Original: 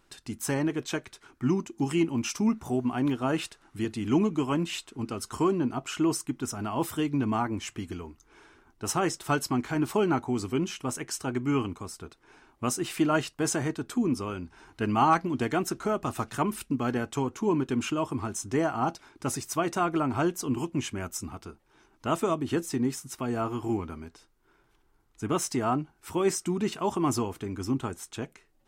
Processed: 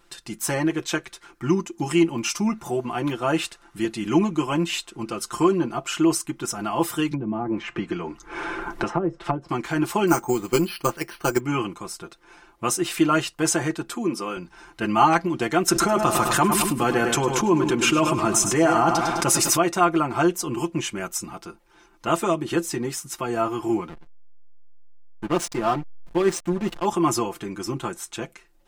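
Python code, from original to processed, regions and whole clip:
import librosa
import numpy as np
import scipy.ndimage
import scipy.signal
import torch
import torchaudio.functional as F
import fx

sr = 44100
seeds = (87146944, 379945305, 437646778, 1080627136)

y = fx.chain(x, sr, fx.env_lowpass_down(base_hz=490.0, full_db=-23.5),
    fx.band_squash(depth_pct=100), at=(7.11, 9.49))
y = fx.chain(y, sr, fx.transient(attack_db=8, sustain_db=-1),
    fx.resample_bad(factor=6, down='filtered', up='hold'), at=(10.07, 11.4))
y = fx.chain(y, sr, fx.highpass(hz=200.0, slope=12),
    fx.notch(hz=6500.0, q=19.0), at=(13.95, 14.37))
y = fx.chain(y, sr, fx.echo_feedback(ms=103, feedback_pct=46, wet_db=-11),
    fx.env_flatten(amount_pct=70), at=(15.68, 19.57))
y = fx.chain(y, sr, fx.high_shelf(hz=6100.0, db=-3.0),
    fx.backlash(play_db=-28.5), at=(23.89, 26.85))
y = fx.peak_eq(y, sr, hz=110.0, db=-6.5, octaves=2.8)
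y = y + 0.78 * np.pad(y, (int(5.8 * sr / 1000.0), 0))[:len(y)]
y = F.gain(torch.from_numpy(y), 5.0).numpy()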